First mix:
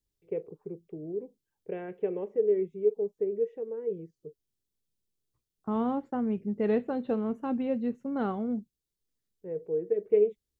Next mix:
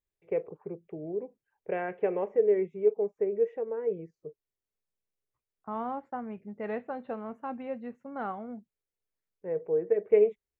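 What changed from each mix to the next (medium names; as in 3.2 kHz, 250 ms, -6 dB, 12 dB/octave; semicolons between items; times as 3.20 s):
second voice -10.5 dB; master: add high-order bell 1.2 kHz +11 dB 2.4 oct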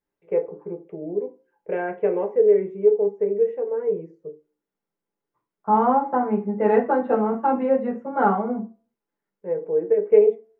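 reverb: on, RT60 0.35 s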